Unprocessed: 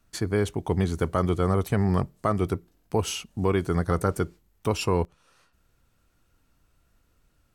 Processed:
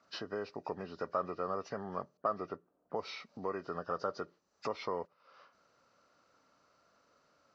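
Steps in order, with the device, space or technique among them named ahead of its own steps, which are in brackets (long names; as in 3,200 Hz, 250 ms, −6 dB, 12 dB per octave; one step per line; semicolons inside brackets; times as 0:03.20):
hearing aid with frequency lowering (hearing-aid frequency compression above 1,400 Hz 1.5 to 1; downward compressor 2.5 to 1, threshold −43 dBFS, peak gain reduction 15.5 dB; loudspeaker in its box 310–5,800 Hz, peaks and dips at 340 Hz −5 dB, 580 Hz +7 dB, 1,200 Hz +7 dB, 2,200 Hz −5 dB, 3,400 Hz −9 dB)
0:02.17–0:03.01: low-pass that shuts in the quiet parts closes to 540 Hz, open at −34 dBFS
level +3 dB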